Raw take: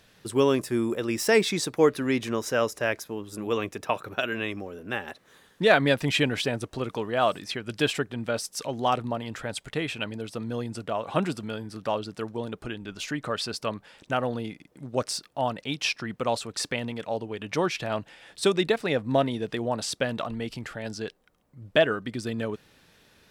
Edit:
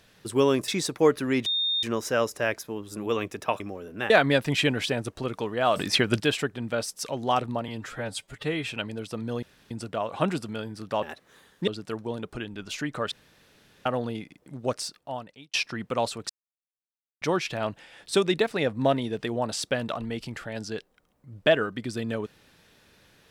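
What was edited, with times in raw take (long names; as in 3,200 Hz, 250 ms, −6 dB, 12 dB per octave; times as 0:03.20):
0:00.68–0:01.46: remove
0:02.24: insert tone 3,660 Hz −23 dBFS 0.37 s
0:04.01–0:04.51: remove
0:05.01–0:05.66: move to 0:11.97
0:07.32–0:07.76: clip gain +10.5 dB
0:09.24–0:09.91: time-stretch 1.5×
0:10.65: splice in room tone 0.28 s
0:13.41–0:14.15: fill with room tone
0:14.90–0:15.83: fade out
0:16.59–0:17.51: silence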